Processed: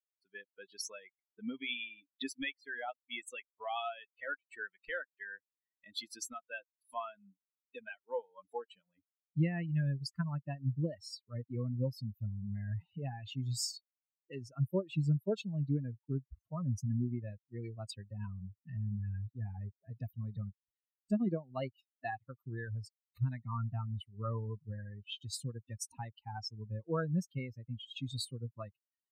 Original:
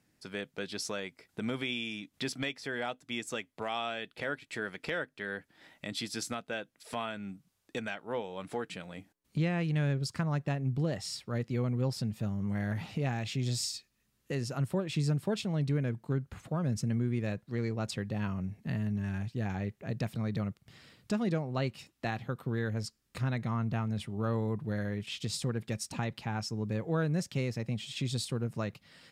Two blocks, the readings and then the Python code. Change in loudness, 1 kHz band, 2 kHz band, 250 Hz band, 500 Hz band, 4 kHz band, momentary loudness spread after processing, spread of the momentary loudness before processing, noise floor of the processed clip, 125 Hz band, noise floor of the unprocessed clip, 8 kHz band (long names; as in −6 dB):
−4.5 dB, −4.5 dB, −5.5 dB, −6.0 dB, −6.0 dB, −5.5 dB, 12 LU, 8 LU, below −85 dBFS, −4.0 dB, −76 dBFS, −4.5 dB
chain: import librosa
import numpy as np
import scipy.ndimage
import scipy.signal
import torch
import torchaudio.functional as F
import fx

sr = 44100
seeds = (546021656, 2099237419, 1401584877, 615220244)

y = fx.bin_expand(x, sr, power=3.0)
y = y * librosa.db_to_amplitude(3.5)